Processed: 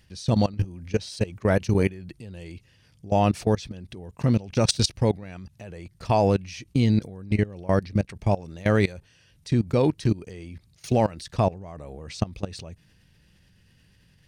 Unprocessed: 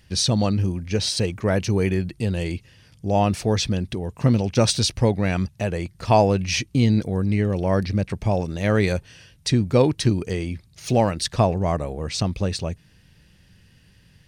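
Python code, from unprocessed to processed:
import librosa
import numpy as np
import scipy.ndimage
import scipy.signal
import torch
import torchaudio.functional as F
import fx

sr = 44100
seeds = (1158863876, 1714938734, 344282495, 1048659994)

y = fx.level_steps(x, sr, step_db=20)
y = F.gain(torch.from_numpy(y), 1.0).numpy()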